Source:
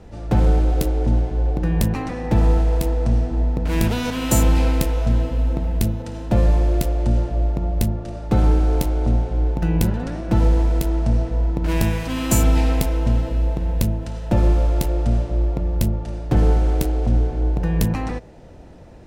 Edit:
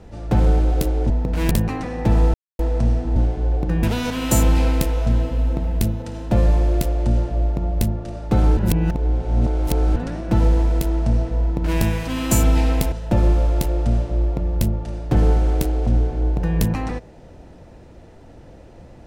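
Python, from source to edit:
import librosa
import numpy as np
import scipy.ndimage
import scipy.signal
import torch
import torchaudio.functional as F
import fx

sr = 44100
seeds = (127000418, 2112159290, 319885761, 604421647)

y = fx.edit(x, sr, fx.swap(start_s=1.1, length_s=0.67, other_s=3.42, other_length_s=0.41),
    fx.silence(start_s=2.6, length_s=0.25),
    fx.reverse_span(start_s=8.57, length_s=1.39),
    fx.cut(start_s=12.92, length_s=1.2), tone=tone)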